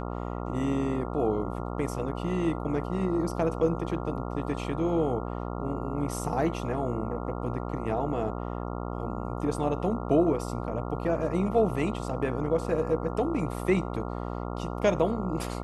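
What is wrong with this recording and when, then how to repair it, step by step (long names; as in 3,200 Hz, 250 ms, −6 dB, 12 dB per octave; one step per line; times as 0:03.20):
mains buzz 60 Hz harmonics 23 −34 dBFS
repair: hum removal 60 Hz, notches 23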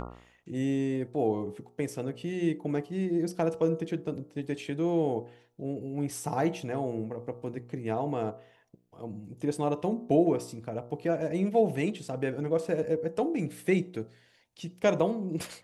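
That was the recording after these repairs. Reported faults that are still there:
none of them is left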